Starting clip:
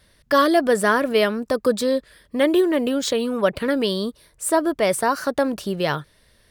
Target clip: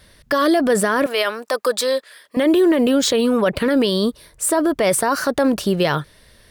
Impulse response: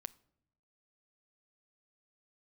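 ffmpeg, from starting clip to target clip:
-filter_complex "[0:a]asettb=1/sr,asplit=3[a][b][c];[a]atrim=end=1.064[d];[b]atrim=start=1.06:end=2.37,asetpts=PTS-STARTPTS,afade=t=in:d=0.004:c=qsin,afade=t=out:st=1.306:d=0.004:c=qsin,highpass=670[e];[c]atrim=start=2.366[f];[d][e]acrossfade=d=0.004:c1=hsin:c2=qsin[g];[g][f]acrossfade=d=0.004:c1=qsin:c2=hsin,alimiter=limit=-16.5dB:level=0:latency=1:release=21,volume=7.5dB"

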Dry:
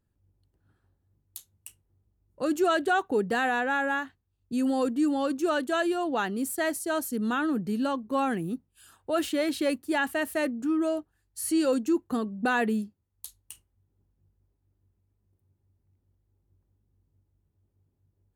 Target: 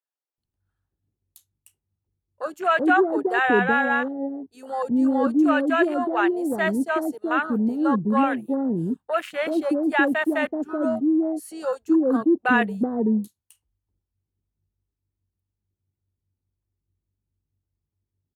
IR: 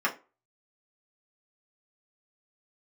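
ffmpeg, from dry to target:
-filter_complex "[0:a]acrossover=split=550[a][b];[a]adelay=380[c];[c][b]amix=inputs=2:normalize=0,afwtdn=0.0158,volume=7dB"

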